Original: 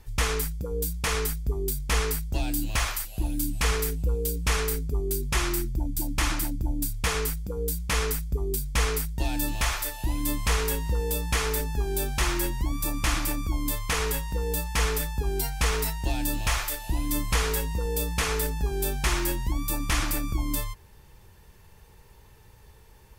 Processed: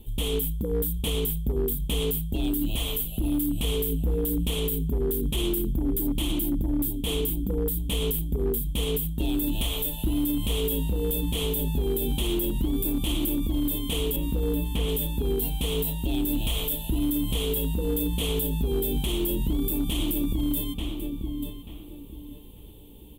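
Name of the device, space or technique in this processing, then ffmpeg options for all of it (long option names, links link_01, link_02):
limiter into clipper: -filter_complex "[0:a]firequalizer=gain_entry='entry(130,0);entry(230,12);entry(570,1);entry(1600,-22);entry(3200,12);entry(5000,-18);entry(8100,1);entry(14000,11)':delay=0.05:min_phase=1,asplit=2[link_01][link_02];[link_02]adelay=887,lowpass=frequency=2800:poles=1,volume=-9.5dB,asplit=2[link_03][link_04];[link_04]adelay=887,lowpass=frequency=2800:poles=1,volume=0.3,asplit=2[link_05][link_06];[link_06]adelay=887,lowpass=frequency=2800:poles=1,volume=0.3[link_07];[link_01][link_03][link_05][link_07]amix=inputs=4:normalize=0,asettb=1/sr,asplit=3[link_08][link_09][link_10];[link_08]atrim=end=14.164[link_11];[link_09]atrim=start=14.16:end=14.89,asetpts=PTS-STARTPTS,afade=type=in:duration=0.004:curve=qsin,afade=type=out:start_time=0.726:duration=0.004:curve=qsin,acrossover=split=2800[link_12][link_13];[link_13]acompressor=threshold=-35dB:ratio=4:attack=1:release=60[link_14];[link_12][link_14]amix=inputs=2:normalize=0[link_15];[link_10]atrim=start=14.886[link_16];[link_11][link_15]acrossfade=duration=0.004:curve1=hsin:curve2=qsin[link_17];[link_17][link_16]acrossfade=duration=0.004:curve1=qsin:curve2=hsin,lowshelf=frequency=210:gain=3.5,alimiter=limit=-17.5dB:level=0:latency=1:release=69,asoftclip=type=hard:threshold=-19.5dB"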